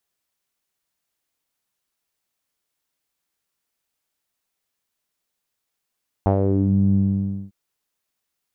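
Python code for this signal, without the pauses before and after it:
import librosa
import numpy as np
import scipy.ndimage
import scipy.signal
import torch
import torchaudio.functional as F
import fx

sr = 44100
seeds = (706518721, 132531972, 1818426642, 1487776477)

y = fx.sub_voice(sr, note=43, wave='saw', cutoff_hz=200.0, q=3.2, env_oct=2.0, env_s=0.47, attack_ms=1.1, decay_s=0.1, sustain_db=-4.5, release_s=0.56, note_s=0.69, slope=12)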